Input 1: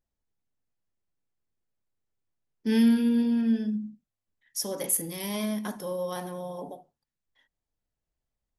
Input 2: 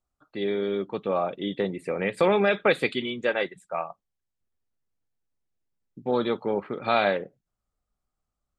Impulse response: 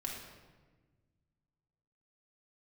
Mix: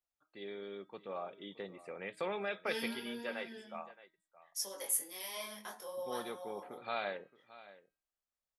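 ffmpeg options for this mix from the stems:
-filter_complex "[0:a]flanger=delay=5.2:depth=5.6:regen=45:speed=1.5:shape=triangular,highpass=490,flanger=delay=19.5:depth=4.3:speed=0.24,volume=1dB[a];[1:a]bandreject=f=317.4:t=h:w=4,bandreject=f=634.8:t=h:w=4,bandreject=f=952.2:t=h:w=4,bandreject=f=1.2696k:t=h:w=4,bandreject=f=1.587k:t=h:w=4,bandreject=f=1.9044k:t=h:w=4,bandreject=f=2.2218k:t=h:w=4,bandreject=f=2.5392k:t=h:w=4,bandreject=f=2.8566k:t=h:w=4,bandreject=f=3.174k:t=h:w=4,bandreject=f=3.4914k:t=h:w=4,bandreject=f=3.8088k:t=h:w=4,bandreject=f=4.1262k:t=h:w=4,bandreject=f=4.4436k:t=h:w=4,volume=-13.5dB,asplit=2[b][c];[c]volume=-17.5dB,aecho=0:1:621:1[d];[a][b][d]amix=inputs=3:normalize=0,lowshelf=f=380:g=-9.5"

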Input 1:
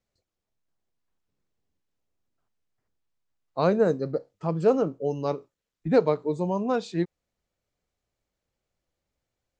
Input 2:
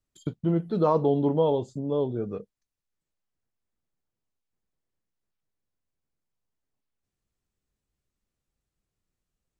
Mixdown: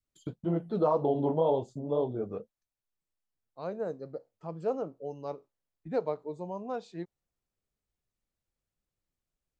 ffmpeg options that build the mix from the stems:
-filter_complex "[0:a]volume=-14dB[a];[1:a]flanger=delay=0.3:depth=10:regen=-42:speed=1.9:shape=triangular,alimiter=limit=-18dB:level=0:latency=1:release=101,volume=-2.5dB,asplit=2[b][c];[c]apad=whole_len=422987[d];[a][d]sidechaincompress=threshold=-47dB:ratio=8:attack=5.6:release=1500[e];[e][b]amix=inputs=2:normalize=0,adynamicequalizer=threshold=0.00447:dfrequency=710:dqfactor=1.1:tfrequency=710:tqfactor=1.1:attack=5:release=100:ratio=0.375:range=4:mode=boostabove:tftype=bell"

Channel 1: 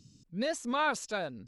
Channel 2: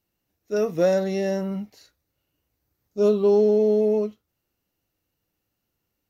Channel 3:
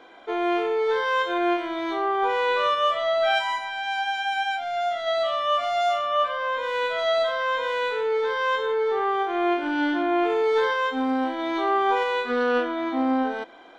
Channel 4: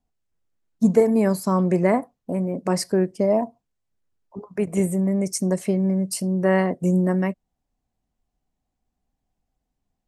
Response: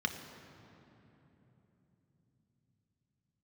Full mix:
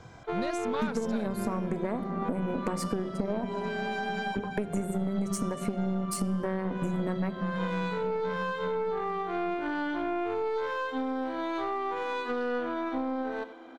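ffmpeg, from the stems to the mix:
-filter_complex "[0:a]volume=-1dB[a];[1:a]adelay=250,volume=-20dB[b];[2:a]aeval=exprs='if(lt(val(0),0),0.708*val(0),val(0))':c=same,highpass=230,acompressor=threshold=-25dB:ratio=6,volume=-4dB,asplit=3[c][d][e];[d]volume=-16.5dB[f];[e]volume=-14dB[g];[3:a]acompressor=threshold=-30dB:ratio=4,volume=2dB,asplit=3[h][i][j];[i]volume=-10dB[k];[j]apad=whole_len=607807[l];[c][l]sidechaincompress=threshold=-46dB:ratio=4:attack=41:release=254[m];[4:a]atrim=start_sample=2205[n];[f][k]amix=inputs=2:normalize=0[o];[o][n]afir=irnorm=-1:irlink=0[p];[g]aecho=0:1:86:1[q];[a][b][m][h][p][q]amix=inputs=6:normalize=0,equalizer=f=61:w=0.5:g=14,aeval=exprs='0.299*(cos(1*acos(clip(val(0)/0.299,-1,1)))-cos(1*PI/2))+0.0237*(cos(6*acos(clip(val(0)/0.299,-1,1)))-cos(6*PI/2))':c=same,acompressor=threshold=-26dB:ratio=6"

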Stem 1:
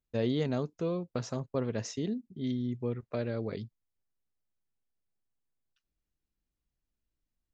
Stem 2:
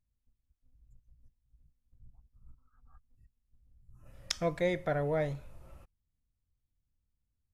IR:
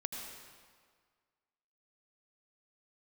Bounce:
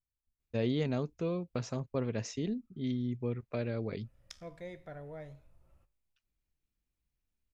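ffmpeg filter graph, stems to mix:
-filter_complex "[0:a]equalizer=f=2.4k:t=o:w=0.38:g=6,adelay=400,volume=-2.5dB[a];[1:a]flanger=delay=8.8:depth=6.9:regen=-84:speed=0.33:shape=triangular,volume=-11dB[b];[a][b]amix=inputs=2:normalize=0,lowshelf=f=170:g=3.5"

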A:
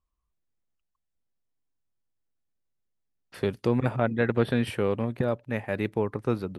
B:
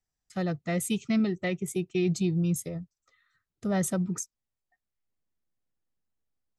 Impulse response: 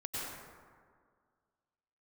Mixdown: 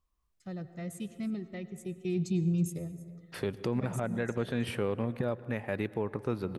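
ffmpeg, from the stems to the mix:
-filter_complex "[0:a]volume=-5.5dB,asplit=3[a][b][c];[b]volume=-21dB[d];[1:a]lowshelf=f=360:g=7,adelay=100,volume=-15.5dB,afade=t=in:st=1.76:d=0.69:silence=0.421697,asplit=3[e][f][g];[f]volume=-14dB[h];[g]volume=-19.5dB[i];[c]apad=whole_len=294974[j];[e][j]sidechaincompress=threshold=-32dB:ratio=8:attack=16:release=125[k];[2:a]atrim=start_sample=2205[l];[d][h]amix=inputs=2:normalize=0[m];[m][l]afir=irnorm=-1:irlink=0[n];[i]aecho=0:1:321:1[o];[a][k][n][o]amix=inputs=4:normalize=0,acontrast=87,alimiter=limit=-20.5dB:level=0:latency=1:release=323"

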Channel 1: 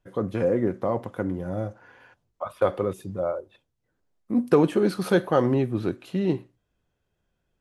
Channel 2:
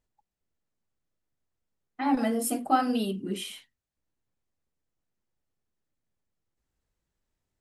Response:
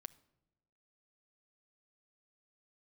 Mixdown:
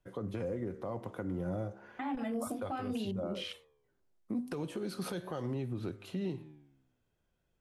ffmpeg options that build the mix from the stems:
-filter_complex "[0:a]bandreject=f=1.7k:w=28,flanger=delay=8:depth=9.2:regen=90:speed=0.35:shape=triangular,volume=1dB[a];[1:a]afwtdn=0.00794,acrossover=split=3000[b][c];[c]acompressor=threshold=-44dB:ratio=4:attack=1:release=60[d];[b][d]amix=inputs=2:normalize=0,volume=2.5dB[e];[a][e]amix=inputs=2:normalize=0,acrossover=split=140|3000[f][g][h];[g]acompressor=threshold=-30dB:ratio=6[i];[f][i][h]amix=inputs=3:normalize=0,alimiter=level_in=4dB:limit=-24dB:level=0:latency=1:release=209,volume=-4dB"

